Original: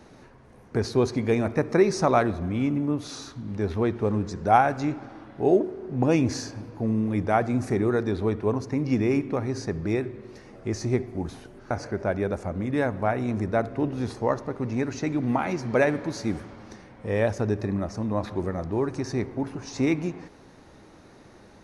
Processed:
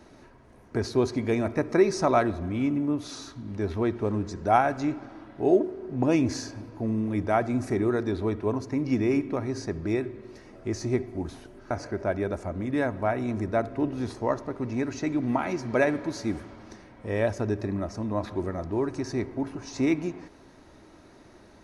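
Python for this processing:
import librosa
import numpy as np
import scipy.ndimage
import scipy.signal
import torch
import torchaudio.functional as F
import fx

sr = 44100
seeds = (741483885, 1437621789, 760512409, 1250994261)

y = x + 0.3 * np.pad(x, (int(3.1 * sr / 1000.0), 0))[:len(x)]
y = y * 10.0 ** (-2.0 / 20.0)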